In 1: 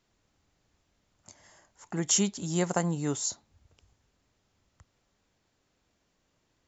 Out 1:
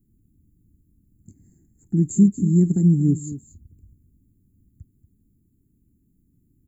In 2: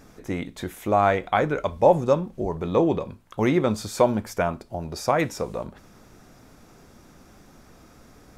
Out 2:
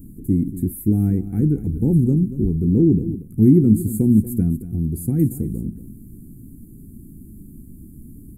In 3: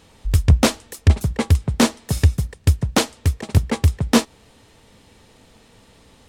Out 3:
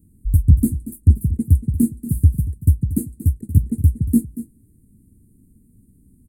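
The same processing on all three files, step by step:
inverse Chebyshev band-stop filter 550–6,000 Hz, stop band 40 dB
single-tap delay 234 ms −14 dB
loudness normalisation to −19 LKFS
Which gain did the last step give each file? +15.0, +13.0, +1.5 decibels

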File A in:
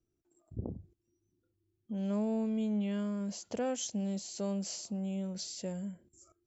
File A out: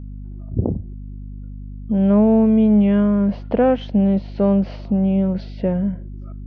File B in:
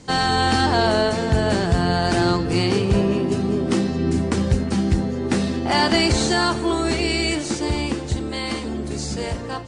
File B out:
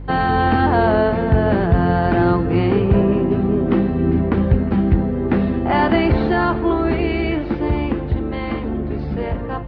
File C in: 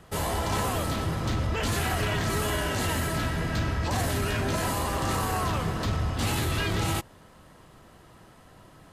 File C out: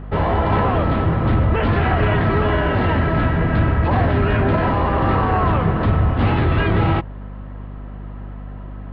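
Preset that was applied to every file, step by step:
Gaussian smoothing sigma 3.6 samples
mains hum 50 Hz, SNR 14 dB
loudness normalisation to −18 LKFS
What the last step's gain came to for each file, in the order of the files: +18.5, +3.5, +11.5 decibels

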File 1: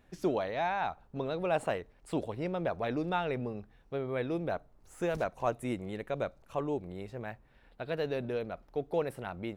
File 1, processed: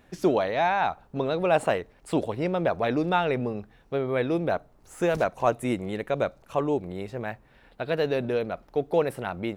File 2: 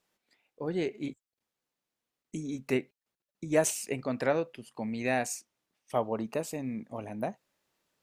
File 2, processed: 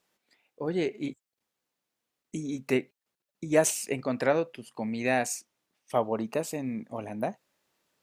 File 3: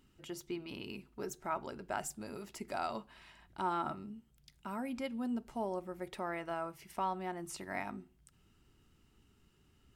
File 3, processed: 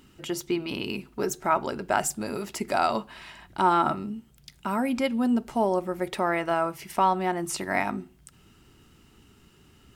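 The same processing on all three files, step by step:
low-shelf EQ 69 Hz −8 dB
normalise the peak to −9 dBFS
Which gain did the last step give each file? +8.0, +3.0, +13.5 decibels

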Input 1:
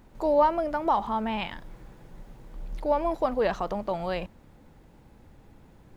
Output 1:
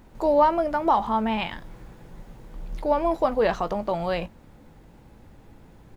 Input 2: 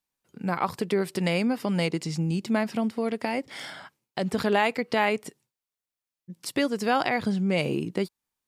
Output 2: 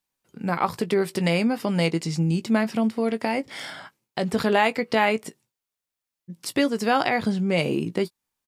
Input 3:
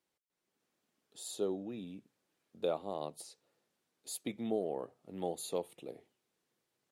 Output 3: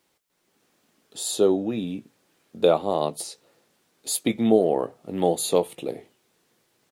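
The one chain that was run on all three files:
double-tracking delay 18 ms −12 dB
loudness normalisation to −24 LKFS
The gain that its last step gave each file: +3.5, +2.5, +15.5 decibels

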